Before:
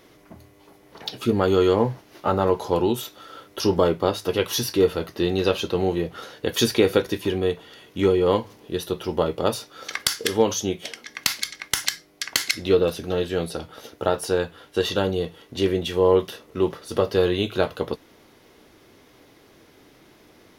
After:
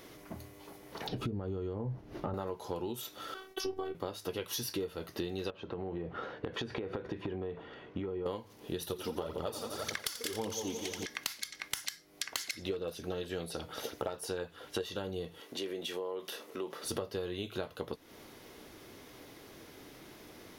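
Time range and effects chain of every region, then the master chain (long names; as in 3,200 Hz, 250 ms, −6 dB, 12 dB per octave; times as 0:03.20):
0:01.07–0:02.34: downward compressor 3 to 1, threshold −28 dBFS + spectral tilt −4 dB per octave
0:03.34–0:03.95: noise gate with hold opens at −39 dBFS, closes at −44 dBFS + bass and treble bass −2 dB, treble −6 dB + phases set to zero 379 Hz
0:05.50–0:08.26: low-pass filter 1,700 Hz + downward compressor 12 to 1, threshold −27 dBFS
0:08.81–0:11.06: echo machine with several playback heads 87 ms, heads first and second, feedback 58%, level −12.5 dB + phase shifter 1.8 Hz, delay 4.5 ms, feedback 54%
0:12.32–0:14.84: hard clipping −10 dBFS + auto-filter bell 5.2 Hz 430–6,700 Hz +7 dB
0:15.40–0:16.83: high-pass filter 300 Hz + downward compressor 2 to 1, threshold −41 dBFS
whole clip: high-shelf EQ 7,300 Hz +5 dB; downward compressor 10 to 1, threshold −34 dBFS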